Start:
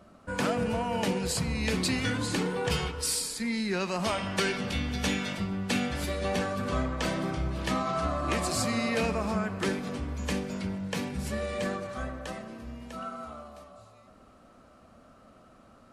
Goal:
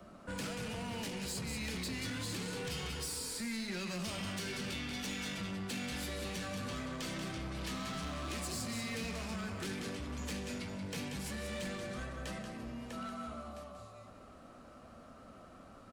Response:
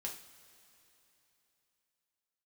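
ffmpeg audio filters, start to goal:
-filter_complex "[0:a]acrossover=split=460|3700[a][b][c];[b]asoftclip=type=hard:threshold=-34.5dB[d];[a][d][c]amix=inputs=3:normalize=0,aecho=1:1:184:0.376,acrossover=split=160|420|1600[e][f][g][h];[e]acompressor=threshold=-43dB:ratio=4[i];[f]acompressor=threshold=-42dB:ratio=4[j];[g]acompressor=threshold=-49dB:ratio=4[k];[h]acompressor=threshold=-37dB:ratio=4[l];[i][j][k][l]amix=inputs=4:normalize=0,asoftclip=type=tanh:threshold=-36dB,flanger=delay=5.6:depth=7:regen=-70:speed=0.17:shape=sinusoidal,volume=5dB"

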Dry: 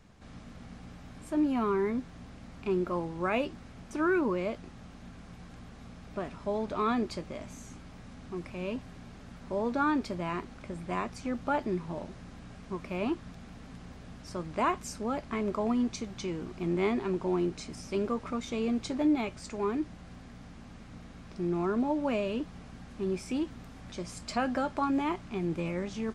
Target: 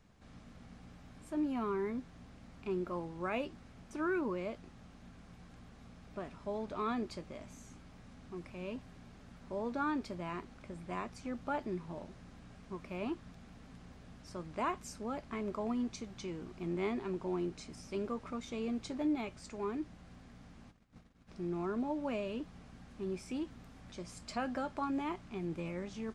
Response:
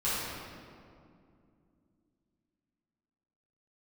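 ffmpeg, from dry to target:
-filter_complex "[0:a]asplit=3[a][b][c];[a]afade=t=out:st=20.7:d=0.02[d];[b]agate=range=-19dB:threshold=-45dB:ratio=16:detection=peak,afade=t=in:st=20.7:d=0.02,afade=t=out:st=21.27:d=0.02[e];[c]afade=t=in:st=21.27:d=0.02[f];[d][e][f]amix=inputs=3:normalize=0,volume=-7dB"

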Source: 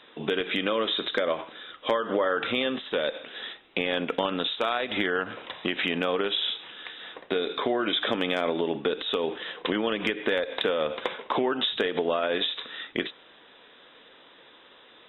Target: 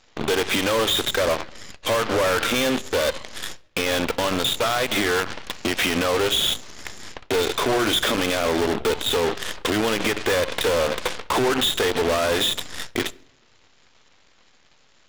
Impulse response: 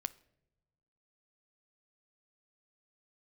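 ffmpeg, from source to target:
-filter_complex "[0:a]volume=28dB,asoftclip=hard,volume=-28dB,aeval=exprs='0.0422*(cos(1*acos(clip(val(0)/0.0422,-1,1)))-cos(1*PI/2))+0.0133*(cos(2*acos(clip(val(0)/0.0422,-1,1)))-cos(2*PI/2))+0.015*(cos(3*acos(clip(val(0)/0.0422,-1,1)))-cos(3*PI/2))+0.0119*(cos(4*acos(clip(val(0)/0.0422,-1,1)))-cos(4*PI/2))+0.000944*(cos(8*acos(clip(val(0)/0.0422,-1,1)))-cos(8*PI/2))':c=same,asplit=2[a][b];[1:a]atrim=start_sample=2205[c];[b][c]afir=irnorm=-1:irlink=0,volume=6.5dB[d];[a][d]amix=inputs=2:normalize=0"

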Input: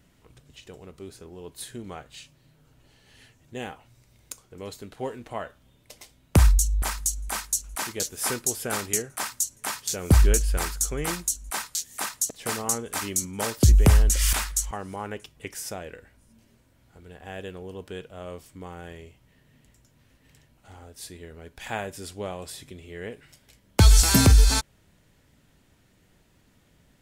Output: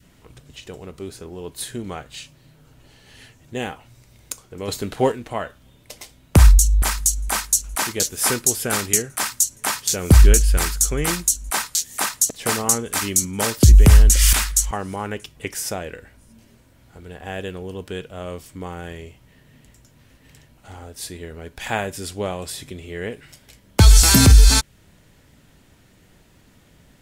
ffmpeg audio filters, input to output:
-filter_complex "[0:a]adynamicequalizer=threshold=0.00631:dfrequency=710:dqfactor=0.71:tfrequency=710:tqfactor=0.71:attack=5:release=100:ratio=0.375:range=3:mode=cutabove:tftype=bell,asettb=1/sr,asplit=3[a][b][c];[a]atrim=end=4.684[d];[b]atrim=start=4.68:end=5.12,asetpts=PTS-STARTPTS,afade=t=in:d=0.004:c=qsin,afade=t=out:st=0.436:d=0.004:c=qsin,acontrast=57[e];[c]atrim=start=5.116[f];[d][e]acrossfade=d=0.004:c1=hsin:c2=qsin[g];[g][f]acrossfade=d=0.004:c1=qsin:c2=hsin,alimiter=level_in=9dB:limit=-1dB:release=50:level=0:latency=1,volume=-1dB"

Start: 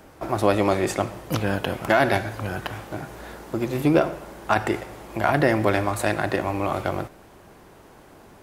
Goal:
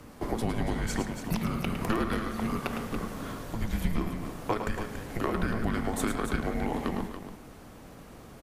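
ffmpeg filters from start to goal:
-af "acompressor=threshold=-26dB:ratio=6,afreqshift=-330,aecho=1:1:107.9|282.8:0.398|0.355"

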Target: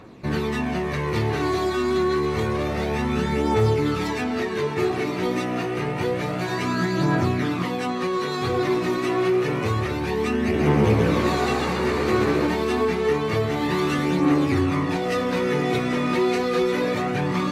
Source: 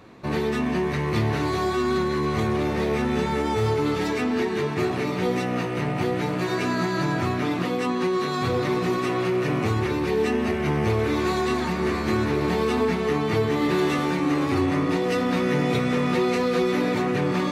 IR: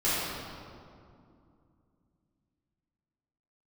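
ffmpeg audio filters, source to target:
-filter_complex "[0:a]aphaser=in_gain=1:out_gain=1:delay=3.3:decay=0.4:speed=0.28:type=triangular,asettb=1/sr,asplit=3[a][b][c];[a]atrim=end=10.404[d];[b]atrim=start=10.4:end=12.47,asetpts=PTS-STARTPTS,afade=t=in:d=0.004:c=qsin,afade=t=out:st=2.066:d=0.004:c=qsin,asplit=8[e][f][g][h][i][j][k][l];[f]adelay=135,afreqshift=62,volume=-4.5dB[m];[g]adelay=270,afreqshift=124,volume=-10dB[n];[h]adelay=405,afreqshift=186,volume=-15.5dB[o];[i]adelay=540,afreqshift=248,volume=-21dB[p];[j]adelay=675,afreqshift=310,volume=-26.6dB[q];[k]adelay=810,afreqshift=372,volume=-32.1dB[r];[l]adelay=945,afreqshift=434,volume=-37.6dB[s];[e][m][n][o][p][q][r][s]amix=inputs=8:normalize=0,atrim=end_sample=91287[t];[c]atrim=start=12.466[u];[d][t]acrossfade=d=0.004:c1=hsin:c2=qsin[v];[v][u]acrossfade=d=0.004:c1=qsin:c2=hsin"

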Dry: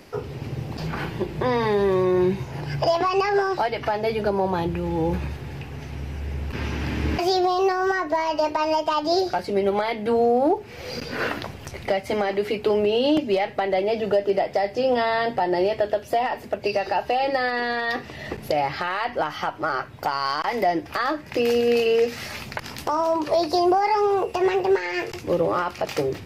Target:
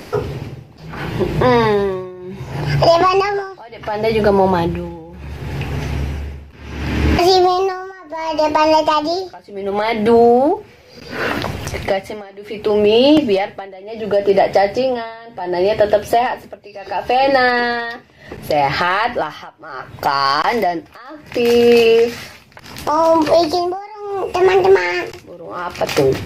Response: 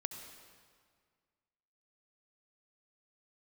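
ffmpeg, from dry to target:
-filter_complex "[0:a]asplit=2[a][b];[b]alimiter=limit=-21.5dB:level=0:latency=1,volume=0dB[c];[a][c]amix=inputs=2:normalize=0,tremolo=f=0.69:d=0.94,volume=7dB"

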